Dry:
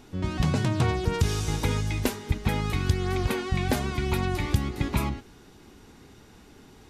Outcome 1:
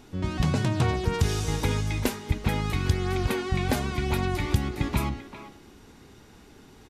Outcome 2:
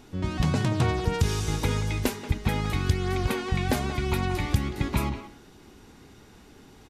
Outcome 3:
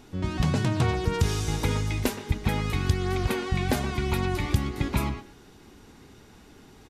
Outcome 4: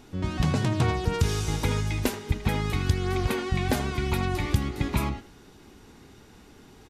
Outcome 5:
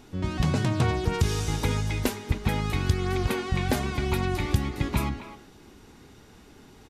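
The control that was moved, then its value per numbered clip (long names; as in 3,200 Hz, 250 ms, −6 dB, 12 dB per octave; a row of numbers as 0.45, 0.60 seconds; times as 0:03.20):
far-end echo of a speakerphone, delay time: 390, 180, 120, 80, 260 milliseconds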